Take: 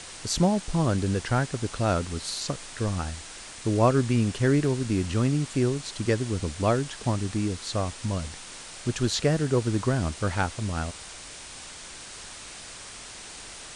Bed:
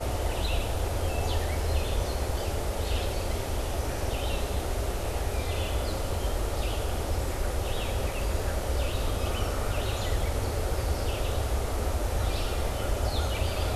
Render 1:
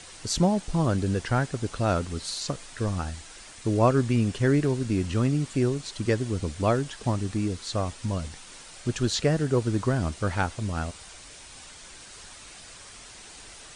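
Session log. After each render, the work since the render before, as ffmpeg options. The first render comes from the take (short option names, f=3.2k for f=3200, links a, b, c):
-af "afftdn=nr=6:nf=-43"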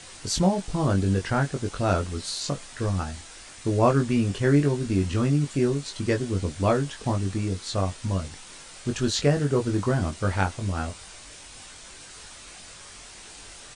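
-filter_complex "[0:a]asplit=2[a][b];[b]adelay=21,volume=-4.5dB[c];[a][c]amix=inputs=2:normalize=0"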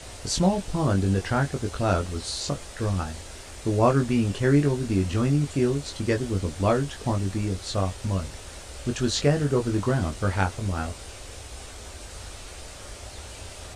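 -filter_complex "[1:a]volume=-14dB[a];[0:a][a]amix=inputs=2:normalize=0"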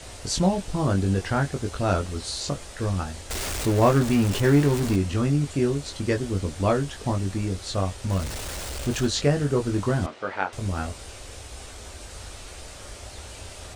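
-filter_complex "[0:a]asettb=1/sr,asplit=3[a][b][c];[a]atrim=end=3.304[d];[b]atrim=start=3.3:end=4.96,asetpts=PTS-STARTPTS,afade=t=in:d=0.004:c=qsin,afade=t=out:st=1.656:d=0.004:c=qsin,aeval=exprs='val(0)+0.5*0.0531*sgn(val(0))':c=same[e];[c]atrim=start=4.956[f];[d][e]acrossfade=d=0.004:c1=hsin:c2=qsin[g];[g][f]acrossfade=d=0.004:c1=qsin:c2=hsin,asettb=1/sr,asplit=3[h][i][j];[h]atrim=end=8.104[k];[i]atrim=start=8.1:end=9.07,asetpts=PTS-STARTPTS,afade=t=in:d=0.004:c=qsin,afade=t=out:st=0.966:d=0.004:c=qsin,aeval=exprs='val(0)+0.5*0.0282*sgn(val(0))':c=same[l];[j]atrim=start=9.066[m];[k][l]acrossfade=d=0.004:c1=hsin:c2=qsin[n];[n][m]acrossfade=d=0.004:c1=qsin:c2=hsin,asettb=1/sr,asplit=3[o][p][q];[o]atrim=end=10.064[r];[p]atrim=start=10.06:end=10.53,asetpts=PTS-STARTPTS,afade=t=in:d=0.004:c=qsin,afade=t=out:st=0.466:d=0.004:c=qsin,highpass=390,lowpass=3k[s];[q]atrim=start=10.526[t];[r][s]acrossfade=d=0.004:c1=hsin:c2=qsin[u];[u][t]acrossfade=d=0.004:c1=qsin:c2=hsin"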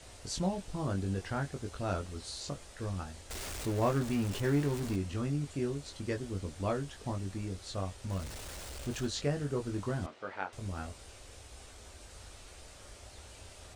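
-af "volume=-11dB"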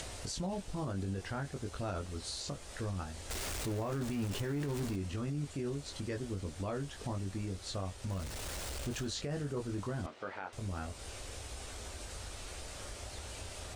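-af "acompressor=mode=upward:threshold=-36dB:ratio=2.5,alimiter=level_in=5.5dB:limit=-24dB:level=0:latency=1:release=30,volume=-5.5dB"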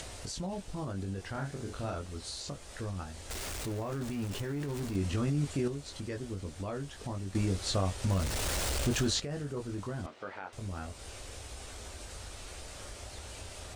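-filter_complex "[0:a]asettb=1/sr,asplit=3[a][b][c];[a]atrim=end=1.304[d];[b]atrim=start=1.3:end=1.95,asetpts=PTS-STARTPTS,afade=t=in:d=0.004:c=qsin,afade=t=out:st=0.646:d=0.004:c=qsin,asplit=2[e][f];[f]adelay=44,volume=-4dB[g];[e][g]amix=inputs=2:normalize=0,atrim=end_sample=28665[h];[c]atrim=start=1.946[i];[d][h]acrossfade=d=0.004:c1=hsin:c2=qsin[j];[j][i]acrossfade=d=0.004:c1=qsin:c2=hsin,asettb=1/sr,asplit=3[k][l][m];[k]atrim=end=4.954[n];[l]atrim=start=4.95:end=5.68,asetpts=PTS-STARTPTS,afade=t=in:d=0.004:c=qsin,afade=t=out:st=0.726:d=0.004:c=qsin,acontrast=65[o];[m]atrim=start=5.676[p];[n][o]acrossfade=d=0.004:c1=hsin:c2=qsin[q];[q][p]acrossfade=d=0.004:c1=qsin:c2=hsin,asplit=3[r][s][t];[r]atrim=end=7.352[u];[s]atrim=start=7.348:end=9.202,asetpts=PTS-STARTPTS,volume=8.5dB[v];[t]atrim=start=9.198[w];[u][v]acrossfade=d=0.004:c1=hsin:c2=hsin[x];[x][w]acrossfade=d=0.004:c1=hsin:c2=hsin"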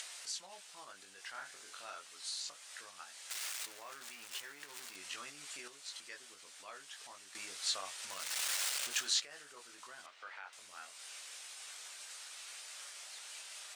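-af "highpass=1.5k"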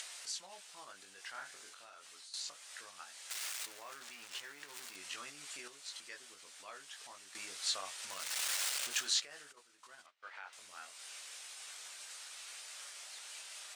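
-filter_complex "[0:a]asettb=1/sr,asplit=3[a][b][c];[a]atrim=end=1.684[d];[b]atrim=start=1.68:end=2.34,asetpts=PTS-STARTPTS,afade=t=in:d=0.004:c=qsin,afade=t=out:st=0.656:d=0.004:c=qsin,acompressor=threshold=-51dB:ratio=10:attack=3.2:release=140:knee=1:detection=peak[e];[c]atrim=start=2.336[f];[d][e]acrossfade=d=0.004:c1=hsin:c2=qsin[g];[g][f]acrossfade=d=0.004:c1=qsin:c2=hsin,asettb=1/sr,asplit=3[h][i][j];[h]atrim=end=4.004[k];[i]atrim=start=4:end=4.68,asetpts=PTS-STARTPTS,afade=t=in:d=0.004:c=qsin,afade=t=out:st=0.676:d=0.004:c=qsin,acrossover=split=7900[l][m];[m]acompressor=threshold=-55dB:ratio=4:attack=1:release=60[n];[l][n]amix=inputs=2:normalize=0[o];[j]atrim=start=4.676[p];[k][o]acrossfade=d=0.004:c1=hsin:c2=qsin[q];[q][p]acrossfade=d=0.004:c1=qsin:c2=hsin,asplit=3[r][s][t];[r]afade=t=out:st=9.51:d=0.02[u];[s]agate=range=-33dB:threshold=-48dB:ratio=3:release=100:detection=peak,afade=t=in:st=9.51:d=0.02,afade=t=out:st=10.33:d=0.02[v];[t]afade=t=in:st=10.33:d=0.02[w];[u][v][w]amix=inputs=3:normalize=0"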